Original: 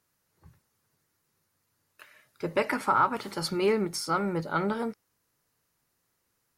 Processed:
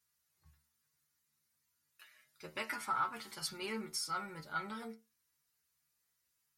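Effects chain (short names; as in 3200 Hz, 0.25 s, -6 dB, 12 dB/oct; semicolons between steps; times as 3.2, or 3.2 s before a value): passive tone stack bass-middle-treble 5-5-5; metallic resonator 73 Hz, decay 0.26 s, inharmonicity 0.002; gain +9.5 dB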